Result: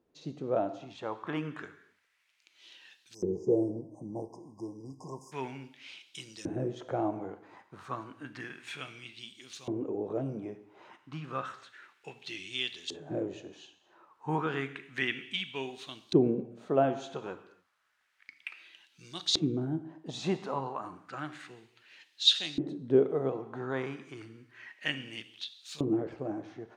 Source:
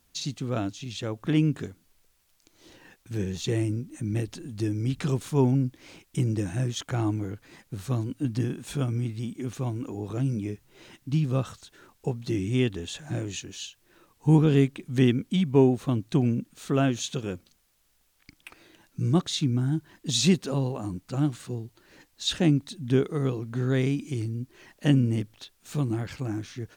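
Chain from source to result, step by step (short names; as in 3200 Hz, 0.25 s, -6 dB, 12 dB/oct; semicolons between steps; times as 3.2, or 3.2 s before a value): non-linear reverb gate 0.31 s falling, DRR 10 dB; spectral delete 3.14–5.32, 1100–4800 Hz; LFO band-pass saw up 0.31 Hz 390–4500 Hz; gain +6.5 dB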